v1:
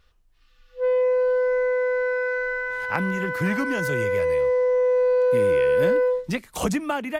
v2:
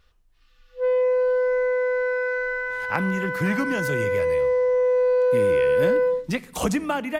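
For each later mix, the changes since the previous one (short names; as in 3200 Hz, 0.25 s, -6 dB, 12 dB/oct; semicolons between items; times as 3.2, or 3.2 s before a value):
reverb: on, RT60 1.0 s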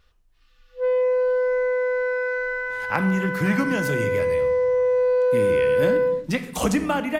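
speech: send +11.0 dB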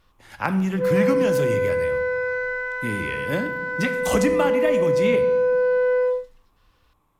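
speech: entry -2.50 s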